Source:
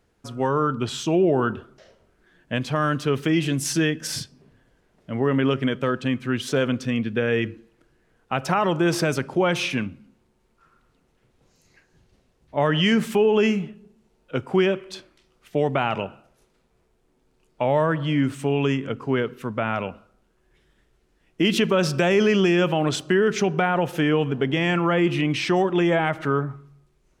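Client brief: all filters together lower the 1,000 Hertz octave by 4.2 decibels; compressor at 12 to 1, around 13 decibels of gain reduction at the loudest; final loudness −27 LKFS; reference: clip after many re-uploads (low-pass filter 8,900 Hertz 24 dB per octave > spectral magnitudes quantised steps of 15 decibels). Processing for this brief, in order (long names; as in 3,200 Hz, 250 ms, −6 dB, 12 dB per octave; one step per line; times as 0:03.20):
parametric band 1,000 Hz −6 dB
downward compressor 12 to 1, threshold −29 dBFS
low-pass filter 8,900 Hz 24 dB per octave
spectral magnitudes quantised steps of 15 dB
level +7.5 dB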